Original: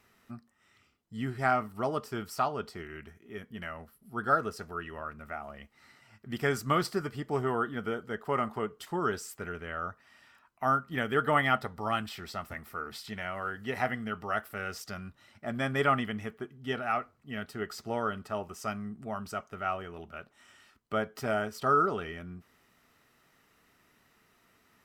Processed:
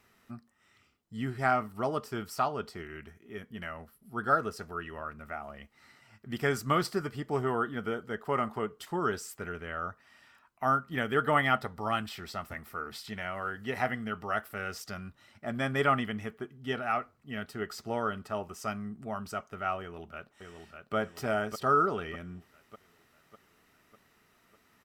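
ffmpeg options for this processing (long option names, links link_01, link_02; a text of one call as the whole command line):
ffmpeg -i in.wav -filter_complex "[0:a]asplit=2[link_01][link_02];[link_02]afade=type=in:start_time=19.8:duration=0.01,afade=type=out:start_time=20.95:duration=0.01,aecho=0:1:600|1200|1800|2400|3000|3600|4200:0.530884|0.291986|0.160593|0.0883259|0.0485792|0.0267186|0.0146952[link_03];[link_01][link_03]amix=inputs=2:normalize=0" out.wav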